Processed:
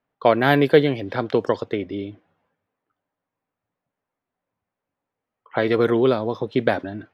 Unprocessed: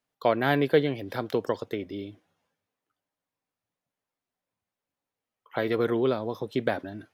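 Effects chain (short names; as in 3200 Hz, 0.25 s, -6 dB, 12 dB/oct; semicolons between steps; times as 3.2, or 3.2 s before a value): low-pass opened by the level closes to 1900 Hz, open at -19 dBFS; gain +7 dB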